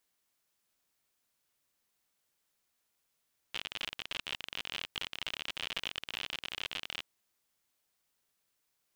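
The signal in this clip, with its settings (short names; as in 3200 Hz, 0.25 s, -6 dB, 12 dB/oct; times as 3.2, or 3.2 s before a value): random clicks 57/s -21 dBFS 3.52 s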